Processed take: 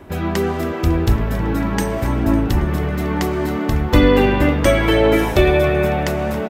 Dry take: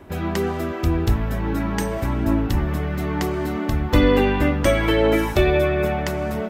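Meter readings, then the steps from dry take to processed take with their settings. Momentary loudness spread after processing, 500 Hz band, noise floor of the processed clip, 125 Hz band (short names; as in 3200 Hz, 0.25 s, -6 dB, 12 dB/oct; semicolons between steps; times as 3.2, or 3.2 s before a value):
6 LU, +3.5 dB, -24 dBFS, +3.5 dB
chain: frequency-shifting echo 0.276 s, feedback 60%, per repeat +74 Hz, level -16 dB; gain +3.5 dB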